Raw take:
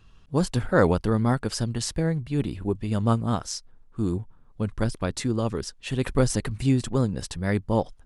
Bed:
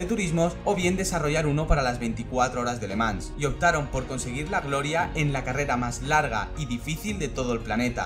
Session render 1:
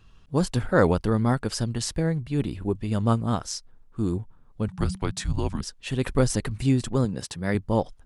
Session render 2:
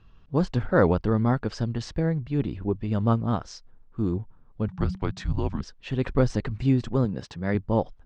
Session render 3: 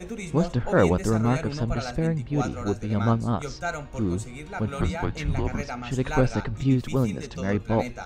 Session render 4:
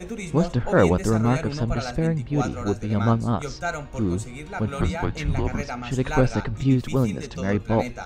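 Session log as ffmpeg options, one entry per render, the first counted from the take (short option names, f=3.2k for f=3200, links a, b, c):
-filter_complex "[0:a]asettb=1/sr,asplit=3[a][b][c];[a]atrim=end=4.684[d];[b]atrim=start=4.68:end=5.61,asetpts=PTS-STARTPTS,afade=t=in:d=0.004:c=qsin,afade=t=out:st=0.926:d=0.004:c=qsin,afreqshift=-200[e];[c]atrim=start=5.606[f];[d][e]acrossfade=d=0.004:c1=hsin:c2=qsin[g];[g][f]acrossfade=d=0.004:c1=qsin:c2=hsin,asettb=1/sr,asplit=3[h][i][j];[h]atrim=end=7.054[k];[i]atrim=start=7.05:end=7.55,asetpts=PTS-STARTPTS,afade=t=in:d=0.004:c=qsin,afade=t=out:st=0.496:d=0.004:c=qsin,highpass=110[l];[j]atrim=start=7.546[m];[k][l]acrossfade=d=0.004:c1=hsin:c2=qsin[n];[n][m]acrossfade=d=0.004:c1=qsin:c2=hsin"
-af "lowpass=f=6.5k:w=0.5412,lowpass=f=6.5k:w=1.3066,aemphasis=mode=reproduction:type=75kf"
-filter_complex "[1:a]volume=-8.5dB[a];[0:a][a]amix=inputs=2:normalize=0"
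-af "volume=2dB"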